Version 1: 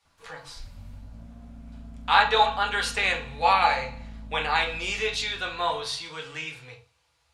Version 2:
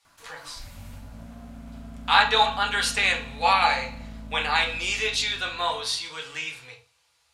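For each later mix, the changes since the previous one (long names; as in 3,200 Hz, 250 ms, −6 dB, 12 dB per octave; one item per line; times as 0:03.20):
background +8.5 dB
master: add spectral tilt +2 dB per octave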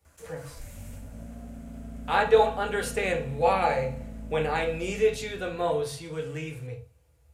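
speech: remove meter weighting curve ITU-R 468
master: add octave-band graphic EQ 500/1,000/4,000/8,000 Hz +6/−9/−7/+6 dB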